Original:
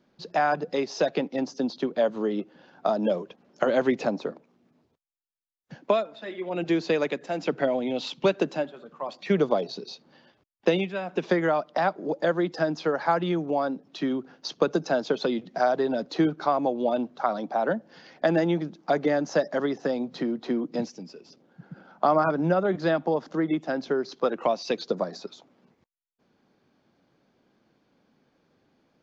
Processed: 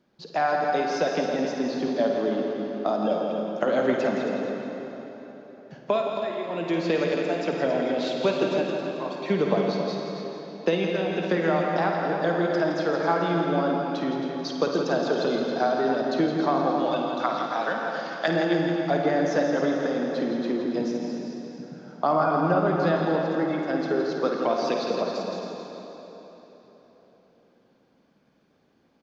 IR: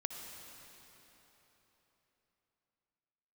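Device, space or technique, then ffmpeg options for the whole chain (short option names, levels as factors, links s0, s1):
cave: -filter_complex "[0:a]asettb=1/sr,asplit=3[s0][s1][s2];[s0]atrim=end=16.714[s3];[s1]atrim=start=16.71:end=18.28,asetpts=PTS-STARTPTS,afade=t=in:d=0.004:c=qsin,afade=t=out:st=1.566:d=0.004:c=qsin,tiltshelf=f=890:g=-10[s4];[s2]atrim=start=18.276[s5];[s3][s4]acrossfade=d=0.004:c1=hsin:c2=qsin[s6];[s6][s5]acrossfade=d=0.004:c1=qsin:c2=hsin,aecho=1:1:271:0.376[s7];[1:a]atrim=start_sample=2205[s8];[s7][s8]afir=irnorm=-1:irlink=0,aecho=1:1:52.48|166.2:0.355|0.398"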